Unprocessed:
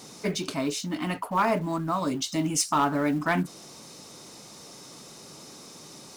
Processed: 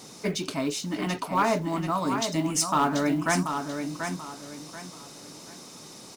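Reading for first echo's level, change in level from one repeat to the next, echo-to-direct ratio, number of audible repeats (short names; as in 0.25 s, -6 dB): -7.0 dB, -10.5 dB, -6.5 dB, 3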